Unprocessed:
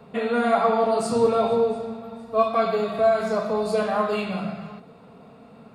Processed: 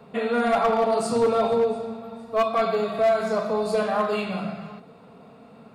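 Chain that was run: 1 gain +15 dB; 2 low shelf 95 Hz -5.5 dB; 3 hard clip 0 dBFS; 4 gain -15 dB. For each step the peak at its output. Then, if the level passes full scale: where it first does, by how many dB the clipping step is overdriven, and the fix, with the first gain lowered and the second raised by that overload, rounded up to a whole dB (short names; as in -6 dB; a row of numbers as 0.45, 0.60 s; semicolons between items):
+7.0, +7.0, 0.0, -15.0 dBFS; step 1, 7.0 dB; step 1 +8 dB, step 4 -8 dB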